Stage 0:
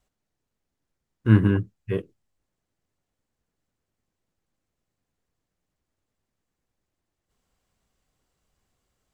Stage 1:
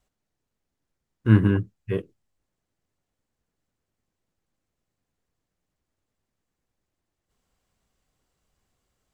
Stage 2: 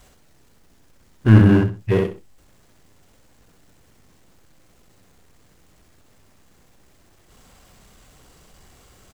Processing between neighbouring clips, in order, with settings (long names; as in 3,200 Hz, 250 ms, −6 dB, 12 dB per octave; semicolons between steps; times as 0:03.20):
no processing that can be heard
repeating echo 64 ms, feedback 15%, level −4 dB; power curve on the samples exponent 0.7; level +2.5 dB